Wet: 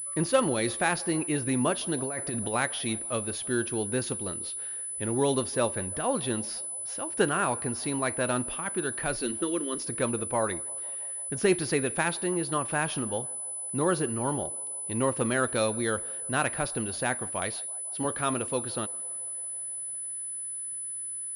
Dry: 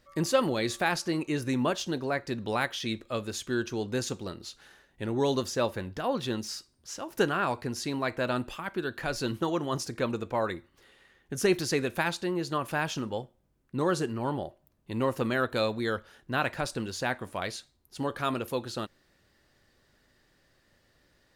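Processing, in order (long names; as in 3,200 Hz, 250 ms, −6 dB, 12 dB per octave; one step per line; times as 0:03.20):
0:09.16–0:09.88: phaser with its sweep stopped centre 320 Hz, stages 4
feedback echo with a band-pass in the loop 166 ms, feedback 81%, band-pass 700 Hz, level −22 dB
0:01.98–0:02.54: compressor whose output falls as the input rises −34 dBFS, ratio −1
0:17.54–0:18.05: high-pass filter 130 Hz 12 dB per octave
switching amplifier with a slow clock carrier 10,000 Hz
level +1 dB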